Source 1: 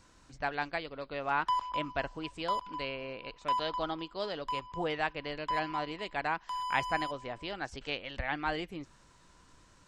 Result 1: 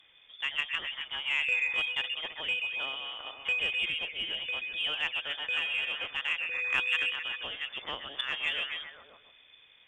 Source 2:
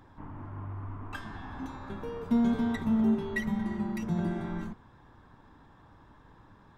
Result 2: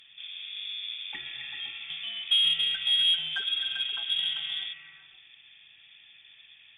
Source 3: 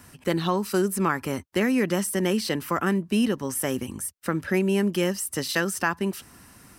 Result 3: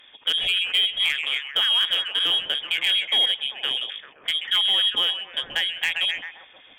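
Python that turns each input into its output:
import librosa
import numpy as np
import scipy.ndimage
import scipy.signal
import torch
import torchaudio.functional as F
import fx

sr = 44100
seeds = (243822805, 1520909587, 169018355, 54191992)

y = fx.dynamic_eq(x, sr, hz=2700.0, q=0.81, threshold_db=-41.0, ratio=4.0, max_db=-3)
y = fx.echo_stepped(y, sr, ms=131, hz=770.0, octaves=0.7, feedback_pct=70, wet_db=-1.0)
y = fx.freq_invert(y, sr, carrier_hz=3500)
y = fx.cheby_harmonics(y, sr, harmonics=(5, 7), levels_db=(-17, -20), full_scale_db=-9.5)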